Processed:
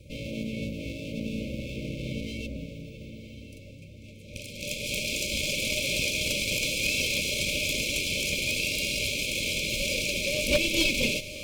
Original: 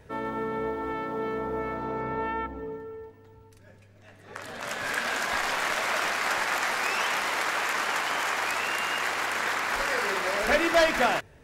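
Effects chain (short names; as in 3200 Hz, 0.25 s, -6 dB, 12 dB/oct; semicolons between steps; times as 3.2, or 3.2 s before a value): minimum comb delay 1.2 ms; FFT band-reject 620–2100 Hz; added harmonics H 6 -24 dB, 8 -31 dB, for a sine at -13.5 dBFS; on a send: diffused feedback echo 1.1 s, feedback 44%, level -11.5 dB; on the sum: wavefolder -18.5 dBFS; gain +5 dB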